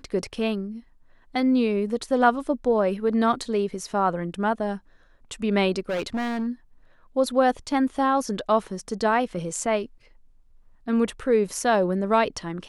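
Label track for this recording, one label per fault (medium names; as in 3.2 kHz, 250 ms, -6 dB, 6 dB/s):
5.890000	6.480000	clipped -23.5 dBFS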